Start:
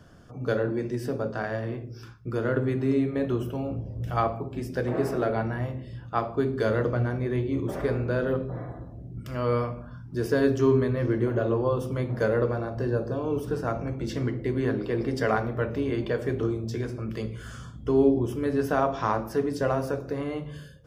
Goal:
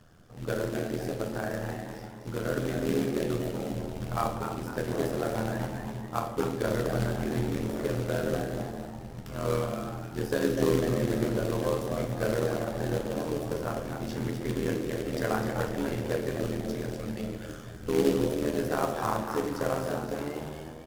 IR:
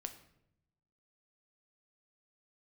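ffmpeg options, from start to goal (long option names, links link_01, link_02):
-filter_complex "[0:a]asplit=6[link_01][link_02][link_03][link_04][link_05][link_06];[link_02]adelay=250,afreqshift=95,volume=-7dB[link_07];[link_03]adelay=500,afreqshift=190,volume=-14.5dB[link_08];[link_04]adelay=750,afreqshift=285,volume=-22.1dB[link_09];[link_05]adelay=1000,afreqshift=380,volume=-29.6dB[link_10];[link_06]adelay=1250,afreqshift=475,volume=-37.1dB[link_11];[link_01][link_07][link_08][link_09][link_10][link_11]amix=inputs=6:normalize=0,tremolo=f=80:d=0.857,acrusher=bits=3:mode=log:mix=0:aa=0.000001[link_12];[1:a]atrim=start_sample=2205,asetrate=30429,aresample=44100[link_13];[link_12][link_13]afir=irnorm=-1:irlink=0"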